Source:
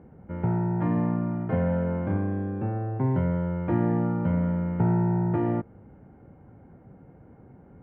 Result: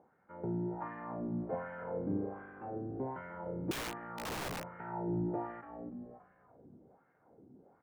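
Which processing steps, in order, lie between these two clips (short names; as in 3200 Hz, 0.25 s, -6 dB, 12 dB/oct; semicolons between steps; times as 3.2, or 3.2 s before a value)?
frequency-shifting echo 0.287 s, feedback 51%, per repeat -54 Hz, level -8.5 dB; wah 1.3 Hz 270–1700 Hz, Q 2.2; 3.71–4.77 wrapped overs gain 32 dB; gain -2.5 dB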